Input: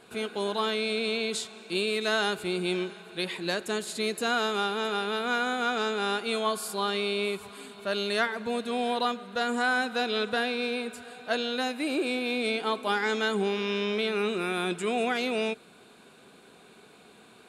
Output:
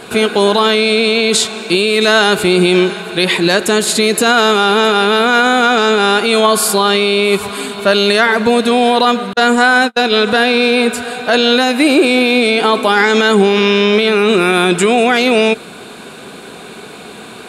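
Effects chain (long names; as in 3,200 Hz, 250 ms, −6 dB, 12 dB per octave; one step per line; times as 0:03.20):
0:09.33–0:10.17: noise gate −28 dBFS, range −47 dB
boost into a limiter +23 dB
level −1 dB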